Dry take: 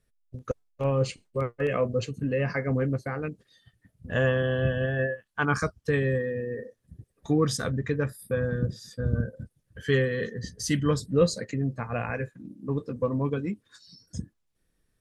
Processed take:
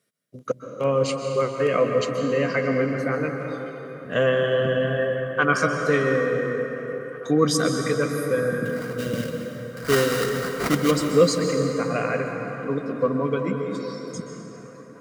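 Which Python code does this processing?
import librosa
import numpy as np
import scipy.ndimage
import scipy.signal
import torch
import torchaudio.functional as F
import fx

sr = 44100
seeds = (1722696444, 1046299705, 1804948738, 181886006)

y = scipy.signal.sosfilt(scipy.signal.butter(4, 140.0, 'highpass', fs=sr, output='sos'), x)
y = fx.low_shelf(y, sr, hz=370.0, db=-6.0)
y = fx.sample_hold(y, sr, seeds[0], rate_hz=3300.0, jitter_pct=20, at=(8.65, 10.9), fade=0.02)
y = fx.notch_comb(y, sr, f0_hz=870.0)
y = fx.echo_wet_bandpass(y, sr, ms=869, feedback_pct=81, hz=1200.0, wet_db=-23.5)
y = fx.rev_plate(y, sr, seeds[1], rt60_s=3.9, hf_ratio=0.55, predelay_ms=115, drr_db=3.5)
y = F.gain(torch.from_numpy(y), 7.5).numpy()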